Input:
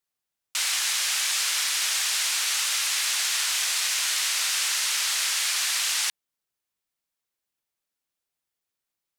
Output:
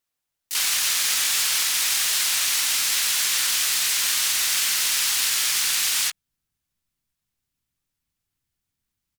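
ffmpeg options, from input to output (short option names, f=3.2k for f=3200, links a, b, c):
-filter_complex "[0:a]asplit=4[a][b][c][d];[b]asetrate=33038,aresample=44100,atempo=1.33484,volume=-8dB[e];[c]asetrate=66075,aresample=44100,atempo=0.66742,volume=-2dB[f];[d]asetrate=88200,aresample=44100,atempo=0.5,volume=-3dB[g];[a][e][f][g]amix=inputs=4:normalize=0,asubboost=boost=9:cutoff=170,acrusher=bits=3:mode=log:mix=0:aa=0.000001"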